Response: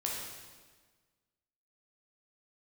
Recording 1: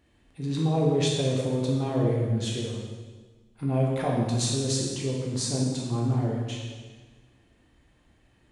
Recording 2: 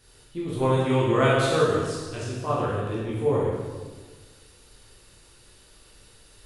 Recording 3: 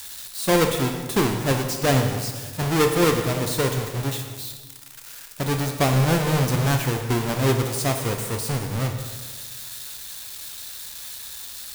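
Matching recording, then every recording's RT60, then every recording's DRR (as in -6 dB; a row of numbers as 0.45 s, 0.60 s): 1; 1.4 s, 1.4 s, 1.4 s; -3.5 dB, -7.5 dB, 4.0 dB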